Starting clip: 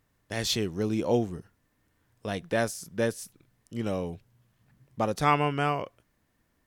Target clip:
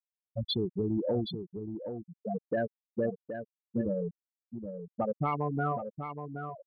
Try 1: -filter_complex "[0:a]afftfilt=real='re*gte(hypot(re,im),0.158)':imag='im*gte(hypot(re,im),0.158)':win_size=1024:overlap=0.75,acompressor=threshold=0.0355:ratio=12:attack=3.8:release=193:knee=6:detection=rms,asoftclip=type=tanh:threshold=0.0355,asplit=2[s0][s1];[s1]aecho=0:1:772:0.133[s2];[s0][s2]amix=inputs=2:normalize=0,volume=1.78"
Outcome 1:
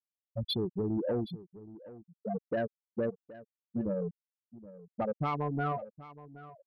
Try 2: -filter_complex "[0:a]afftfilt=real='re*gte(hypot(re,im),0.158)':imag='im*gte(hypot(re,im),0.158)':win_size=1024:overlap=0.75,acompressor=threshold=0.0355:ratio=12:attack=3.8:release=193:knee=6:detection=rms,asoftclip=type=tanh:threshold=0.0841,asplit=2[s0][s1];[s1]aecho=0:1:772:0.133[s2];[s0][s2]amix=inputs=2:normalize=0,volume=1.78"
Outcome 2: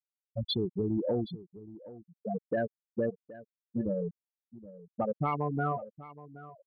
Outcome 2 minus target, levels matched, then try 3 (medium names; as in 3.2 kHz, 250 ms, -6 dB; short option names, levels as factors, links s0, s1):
echo-to-direct -9 dB
-filter_complex "[0:a]afftfilt=real='re*gte(hypot(re,im),0.158)':imag='im*gte(hypot(re,im),0.158)':win_size=1024:overlap=0.75,acompressor=threshold=0.0355:ratio=12:attack=3.8:release=193:knee=6:detection=rms,asoftclip=type=tanh:threshold=0.0841,asplit=2[s0][s1];[s1]aecho=0:1:772:0.376[s2];[s0][s2]amix=inputs=2:normalize=0,volume=1.78"